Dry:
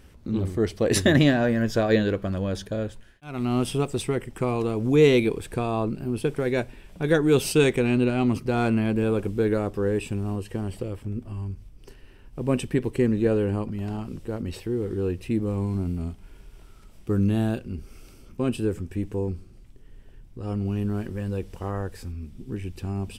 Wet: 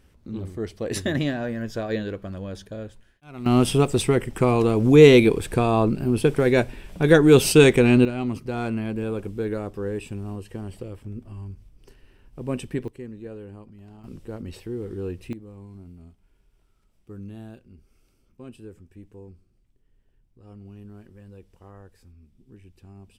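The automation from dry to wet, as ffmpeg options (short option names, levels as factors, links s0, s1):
-af "asetnsamples=n=441:p=0,asendcmd='3.46 volume volume 6dB;8.05 volume volume -4.5dB;12.88 volume volume -16dB;14.04 volume volume -4.5dB;15.33 volume volume -16.5dB',volume=0.473"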